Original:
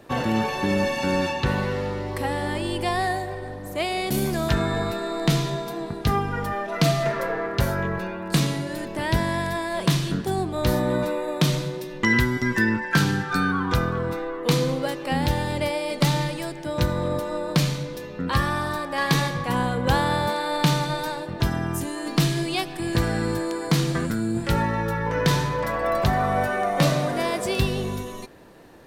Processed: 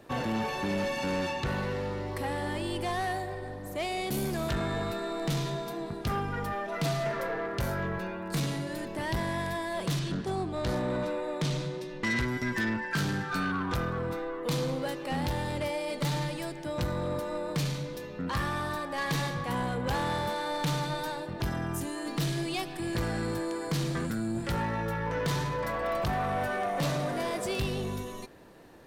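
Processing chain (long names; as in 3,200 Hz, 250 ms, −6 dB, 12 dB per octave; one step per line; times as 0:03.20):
0:09.99–0:12.28: low-pass filter 7,700 Hz 12 dB per octave
soft clipping −20.5 dBFS, distortion −11 dB
level −4.5 dB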